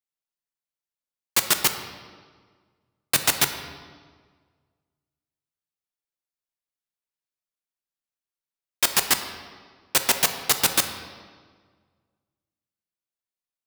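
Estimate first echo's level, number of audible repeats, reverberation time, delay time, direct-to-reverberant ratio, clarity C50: no echo, no echo, 1.6 s, no echo, 6.5 dB, 8.5 dB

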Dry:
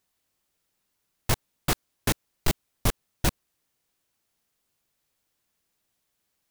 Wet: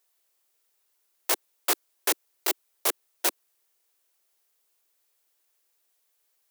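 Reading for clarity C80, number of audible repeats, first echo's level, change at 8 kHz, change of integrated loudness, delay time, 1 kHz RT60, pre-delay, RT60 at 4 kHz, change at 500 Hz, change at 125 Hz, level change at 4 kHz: no reverb, no echo, no echo, +4.0 dB, +2.0 dB, no echo, no reverb, no reverb, no reverb, -0.5 dB, under -40 dB, +1.5 dB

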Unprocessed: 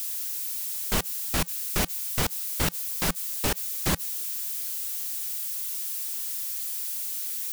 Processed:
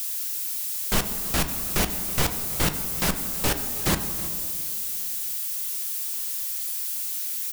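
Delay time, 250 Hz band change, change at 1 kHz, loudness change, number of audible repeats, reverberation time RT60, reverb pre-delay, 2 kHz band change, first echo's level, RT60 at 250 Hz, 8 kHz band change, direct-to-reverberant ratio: 322 ms, +3.5 dB, +3.0 dB, +2.5 dB, 1, 2.5 s, 6 ms, +2.5 dB, -19.0 dB, 3.1 s, +2.5 dB, 6.5 dB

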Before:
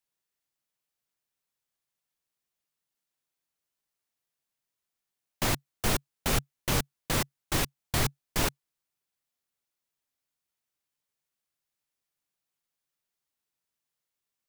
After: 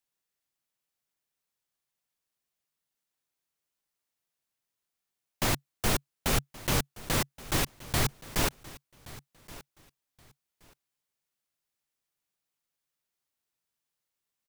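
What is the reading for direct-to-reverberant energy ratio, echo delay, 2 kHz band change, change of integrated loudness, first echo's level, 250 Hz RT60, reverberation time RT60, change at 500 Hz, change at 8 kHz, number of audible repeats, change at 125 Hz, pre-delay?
no reverb, 1124 ms, 0.0 dB, 0.0 dB, -19.0 dB, no reverb, no reverb, 0.0 dB, 0.0 dB, 2, 0.0 dB, no reverb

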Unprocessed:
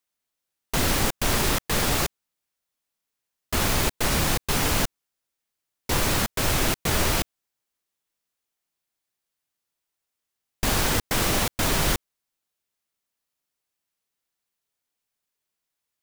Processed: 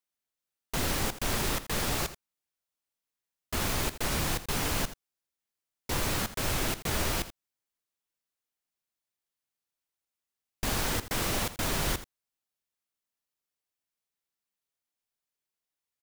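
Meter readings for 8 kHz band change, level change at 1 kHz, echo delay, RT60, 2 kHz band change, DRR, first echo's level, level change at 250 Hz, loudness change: -7.0 dB, -7.0 dB, 82 ms, no reverb, -7.0 dB, no reverb, -14.0 dB, -7.0 dB, -7.0 dB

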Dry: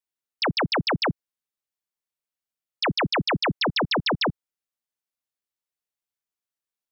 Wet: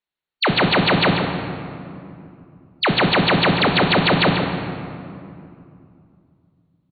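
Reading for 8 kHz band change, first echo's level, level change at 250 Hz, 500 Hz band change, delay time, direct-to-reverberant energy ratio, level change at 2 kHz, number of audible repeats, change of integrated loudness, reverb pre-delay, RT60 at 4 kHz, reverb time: no reading, -8.0 dB, +9.0 dB, +8.5 dB, 139 ms, 1.0 dB, +8.0 dB, 1, +6.5 dB, 5 ms, 1.5 s, 2.6 s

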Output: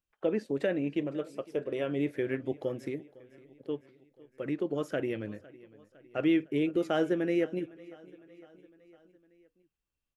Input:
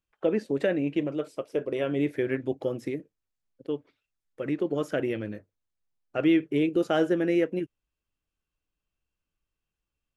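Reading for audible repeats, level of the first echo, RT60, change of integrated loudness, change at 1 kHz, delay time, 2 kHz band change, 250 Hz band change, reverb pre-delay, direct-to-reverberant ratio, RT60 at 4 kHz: 3, -21.5 dB, no reverb, -4.0 dB, -4.0 dB, 507 ms, -4.0 dB, -4.0 dB, no reverb, no reverb, no reverb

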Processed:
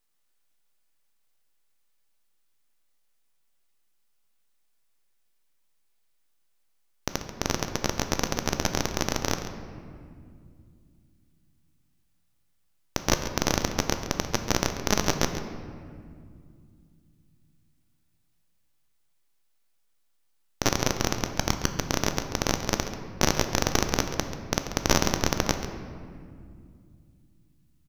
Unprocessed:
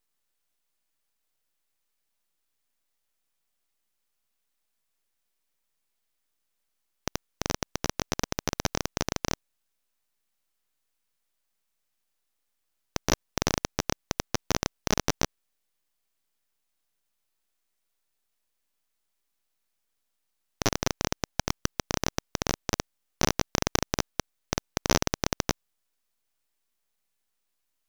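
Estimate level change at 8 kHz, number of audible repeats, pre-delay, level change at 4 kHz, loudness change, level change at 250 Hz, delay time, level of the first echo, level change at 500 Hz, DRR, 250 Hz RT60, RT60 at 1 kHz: +2.5 dB, 1, 3 ms, +3.0 dB, +3.0 dB, +3.5 dB, 137 ms, -12.5 dB, +3.0 dB, 5.5 dB, 3.7 s, 2.0 s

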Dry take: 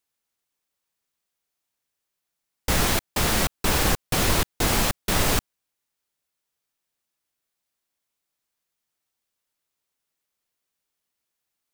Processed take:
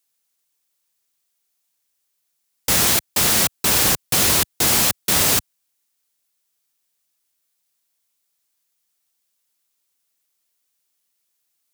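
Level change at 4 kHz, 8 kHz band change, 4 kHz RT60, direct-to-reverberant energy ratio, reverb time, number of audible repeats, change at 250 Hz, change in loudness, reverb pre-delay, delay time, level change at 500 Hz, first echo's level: +6.5 dB, +9.5 dB, no reverb, no reverb, no reverb, no echo, 0.0 dB, +7.0 dB, no reverb, no echo, +0.5 dB, no echo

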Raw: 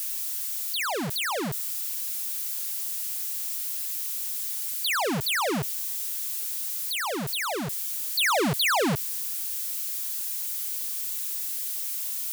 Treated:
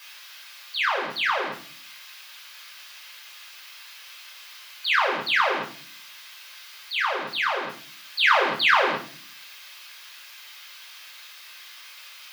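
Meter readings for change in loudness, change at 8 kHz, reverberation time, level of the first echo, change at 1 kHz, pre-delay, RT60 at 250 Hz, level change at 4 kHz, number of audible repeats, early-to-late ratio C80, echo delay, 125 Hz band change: +4.0 dB, -16.0 dB, 0.45 s, no echo, +5.5 dB, 5 ms, 0.80 s, +2.0 dB, no echo, 15.0 dB, no echo, -16.0 dB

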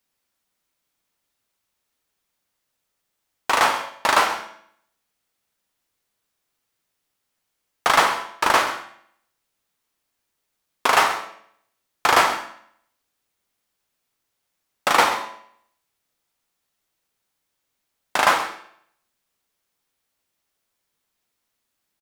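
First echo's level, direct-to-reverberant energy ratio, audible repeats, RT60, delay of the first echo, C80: -15.5 dB, 5.5 dB, 1, 0.65 s, 131 ms, 11.0 dB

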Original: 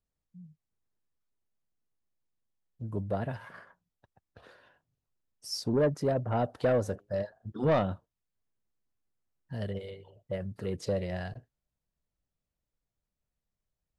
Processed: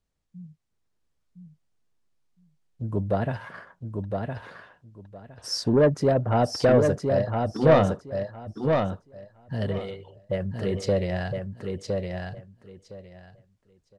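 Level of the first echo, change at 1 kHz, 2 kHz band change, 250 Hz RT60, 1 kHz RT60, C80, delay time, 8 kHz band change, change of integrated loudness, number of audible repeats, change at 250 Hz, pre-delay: -4.5 dB, +8.5 dB, +8.5 dB, no reverb, no reverb, no reverb, 1012 ms, +7.0 dB, +6.5 dB, 3, +8.5 dB, no reverb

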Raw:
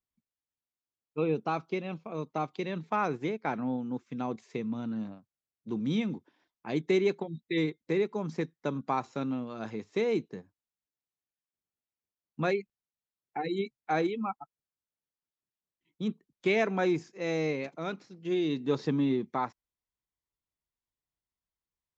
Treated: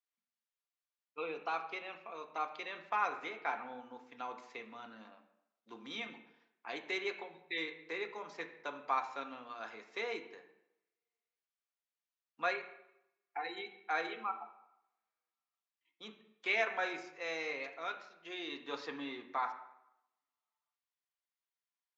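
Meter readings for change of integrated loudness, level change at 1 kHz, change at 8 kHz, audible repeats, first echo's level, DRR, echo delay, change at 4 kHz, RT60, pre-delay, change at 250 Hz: -7.5 dB, -3.5 dB, no reading, no echo, no echo, 4.0 dB, no echo, -1.5 dB, 0.85 s, 3 ms, -19.0 dB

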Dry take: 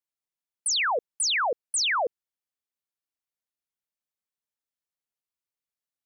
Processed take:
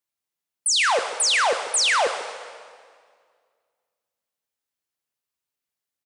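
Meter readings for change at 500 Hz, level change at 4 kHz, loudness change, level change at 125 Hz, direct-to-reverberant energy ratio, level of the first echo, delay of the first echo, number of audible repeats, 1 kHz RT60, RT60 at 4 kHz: +5.5 dB, +5.5 dB, +5.0 dB, no reading, 6.0 dB, -14.5 dB, 143 ms, 1, 1.9 s, 1.6 s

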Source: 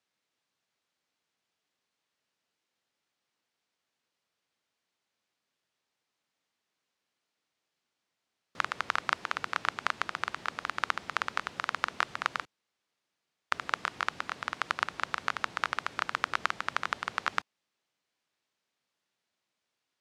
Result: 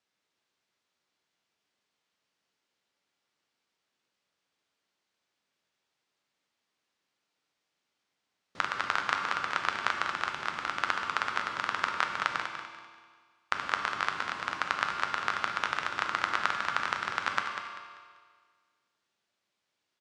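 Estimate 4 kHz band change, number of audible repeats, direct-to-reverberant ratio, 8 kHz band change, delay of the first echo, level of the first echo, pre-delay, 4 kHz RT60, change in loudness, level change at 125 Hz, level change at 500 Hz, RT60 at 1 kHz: +2.0 dB, 3, 2.0 dB, +1.0 dB, 195 ms, -9.0 dB, 9 ms, 1.6 s, +2.0 dB, +1.5 dB, +2.0 dB, 1.7 s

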